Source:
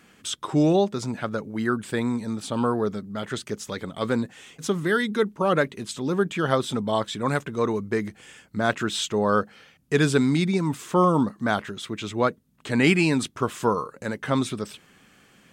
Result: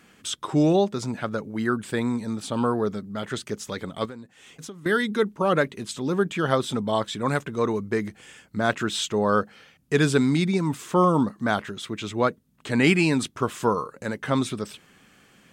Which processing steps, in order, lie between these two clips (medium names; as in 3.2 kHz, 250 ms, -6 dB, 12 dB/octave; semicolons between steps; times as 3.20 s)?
4.05–4.86 s: compression 5:1, threshold -39 dBFS, peak gain reduction 18 dB